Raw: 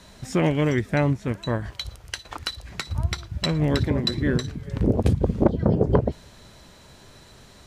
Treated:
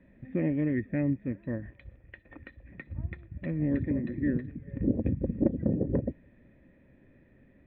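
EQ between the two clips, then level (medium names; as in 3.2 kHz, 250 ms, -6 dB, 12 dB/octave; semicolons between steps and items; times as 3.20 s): cascade formant filter e; resonant low shelf 370 Hz +9 dB, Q 3; 0.0 dB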